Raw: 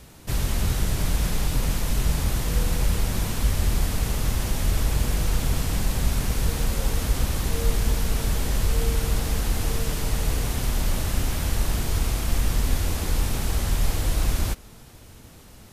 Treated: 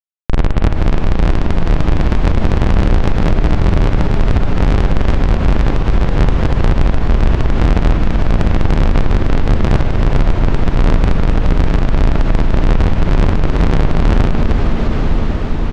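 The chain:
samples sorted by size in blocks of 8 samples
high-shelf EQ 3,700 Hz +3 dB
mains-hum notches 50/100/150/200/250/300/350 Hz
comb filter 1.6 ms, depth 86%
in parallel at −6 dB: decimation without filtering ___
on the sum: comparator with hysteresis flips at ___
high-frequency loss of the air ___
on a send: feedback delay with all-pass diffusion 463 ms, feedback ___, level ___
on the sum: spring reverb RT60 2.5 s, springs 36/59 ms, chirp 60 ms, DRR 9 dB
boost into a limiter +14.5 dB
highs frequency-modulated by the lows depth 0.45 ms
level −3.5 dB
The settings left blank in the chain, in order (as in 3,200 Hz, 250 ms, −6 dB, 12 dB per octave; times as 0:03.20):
29×, −11.5 dBFS, 160 metres, 75%, −8.5 dB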